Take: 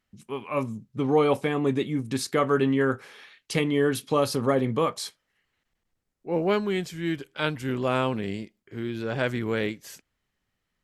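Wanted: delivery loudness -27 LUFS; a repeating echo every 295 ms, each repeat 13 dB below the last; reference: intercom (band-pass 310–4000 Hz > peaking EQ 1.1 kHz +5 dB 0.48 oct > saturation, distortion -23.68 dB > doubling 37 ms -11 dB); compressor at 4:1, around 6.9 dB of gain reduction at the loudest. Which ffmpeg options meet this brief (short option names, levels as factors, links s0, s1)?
-filter_complex "[0:a]acompressor=threshold=0.0562:ratio=4,highpass=310,lowpass=4000,equalizer=f=1100:t=o:w=0.48:g=5,aecho=1:1:295|590|885:0.224|0.0493|0.0108,asoftclip=threshold=0.15,asplit=2[s0][s1];[s1]adelay=37,volume=0.282[s2];[s0][s2]amix=inputs=2:normalize=0,volume=1.88"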